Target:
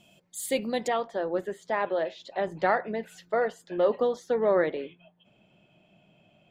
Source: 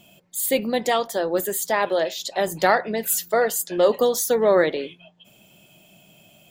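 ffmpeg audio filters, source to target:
-af "asetnsamples=n=441:p=0,asendcmd='0.88 lowpass f 2300',lowpass=9700,volume=0.501"

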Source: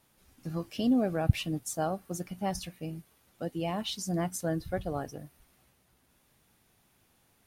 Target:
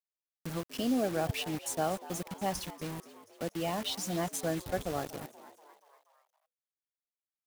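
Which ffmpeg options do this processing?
-filter_complex "[0:a]acrossover=split=300[s0][s1];[s0]acompressor=threshold=0.00794:ratio=2[s2];[s2][s1]amix=inputs=2:normalize=0,acrusher=bits=6:mix=0:aa=0.000001,asplit=2[s3][s4];[s4]asplit=5[s5][s6][s7][s8][s9];[s5]adelay=240,afreqshift=99,volume=0.15[s10];[s6]adelay=480,afreqshift=198,volume=0.0871[s11];[s7]adelay=720,afreqshift=297,volume=0.0501[s12];[s8]adelay=960,afreqshift=396,volume=0.0292[s13];[s9]adelay=1200,afreqshift=495,volume=0.017[s14];[s10][s11][s12][s13][s14]amix=inputs=5:normalize=0[s15];[s3][s15]amix=inputs=2:normalize=0"

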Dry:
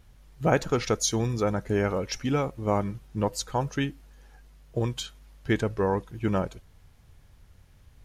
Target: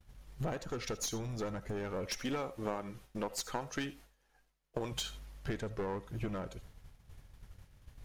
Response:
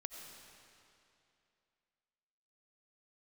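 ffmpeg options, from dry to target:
-filter_complex "[0:a]asettb=1/sr,asplit=3[s0][s1][s2];[s0]atrim=end=2.064[s3];[s1]atrim=start=2.06:end=4.92,asetpts=PTS-STARTPTS,afade=t=in:d=0.004:c=qsin,afade=t=out:st=2.856:d=0.004:c=qsin,equalizer=f=72:w=0.42:g=-14.5[s4];[s2]atrim=start=4.916[s5];[s3][s4]acrossfade=d=0.004:c1=hsin:c2=qsin[s6];[s6][s5]acrossfade=d=0.004:c1=qsin:c2=hsin,agate=range=0.0224:threshold=0.00447:ratio=3:detection=peak,acompressor=threshold=0.0158:ratio=16,aeval=exprs='clip(val(0),-1,0.00944)':c=same[s7];[1:a]atrim=start_sample=2205,atrim=end_sample=3969[s8];[s7][s8]afir=irnorm=-1:irlink=0,volume=2.82"

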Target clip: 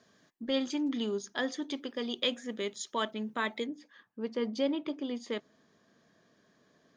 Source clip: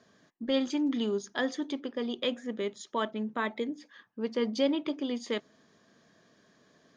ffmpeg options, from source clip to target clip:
-af "asetnsamples=n=441:p=0,asendcmd='1.71 highshelf g 10.5;3.66 highshelf g -2.5',highshelf=f=2400:g=4,volume=0.708"

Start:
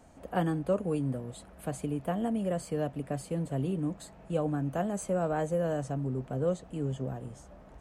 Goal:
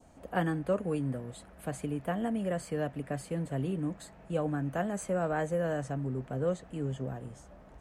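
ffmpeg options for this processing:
-af "adynamicequalizer=threshold=0.002:dfrequency=1800:dqfactor=1.6:tfrequency=1800:tqfactor=1.6:attack=5:release=100:ratio=0.375:range=3.5:mode=boostabove:tftype=bell,volume=0.841"

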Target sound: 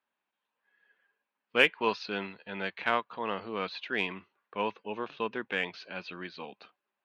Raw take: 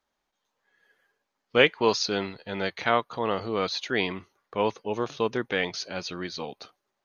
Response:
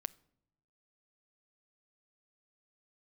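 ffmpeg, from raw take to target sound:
-af "highpass=120,equalizer=f=130:t=q:w=4:g=-8,equalizer=f=200:t=q:w=4:g=4,equalizer=f=1000:t=q:w=4:g=5,equalizer=f=1600:t=q:w=4:g=6,equalizer=f=2600:t=q:w=4:g=9,lowpass=f=4000:w=0.5412,lowpass=f=4000:w=1.3066,aeval=exprs='1.06*(cos(1*acos(clip(val(0)/1.06,-1,1)))-cos(1*PI/2))+0.0237*(cos(7*acos(clip(val(0)/1.06,-1,1)))-cos(7*PI/2))':c=same,volume=0.447"

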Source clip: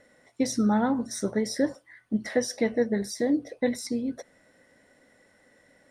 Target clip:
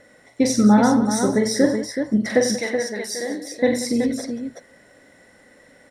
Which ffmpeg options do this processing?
-filter_complex "[0:a]asettb=1/sr,asplit=3[s0][s1][s2];[s0]atrim=end=2.564[s3];[s1]atrim=start=2.56:end=3.54,asetpts=PTS-STARTPTS,afade=t=in:d=0.004:c=qsin,afade=t=out:st=0.976:d=0.004:c=qsin,highpass=f=1300:p=1[s4];[s2]atrim=start=3.536[s5];[s3][s4]acrossfade=d=0.004:c1=hsin:c2=qsin[s6];[s6][s5]acrossfade=d=0.004:c1=qsin:c2=hsin,aecho=1:1:43|92|183|376:0.501|0.282|0.188|0.473,volume=2.24"

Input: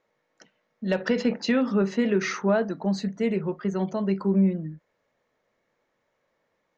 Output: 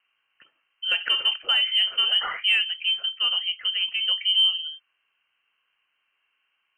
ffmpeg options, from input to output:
-af "highpass=110,lowpass=f=2800:t=q:w=0.5098,lowpass=f=2800:t=q:w=0.6013,lowpass=f=2800:t=q:w=0.9,lowpass=f=2800:t=q:w=2.563,afreqshift=-3300,acontrast=35,volume=0.596"

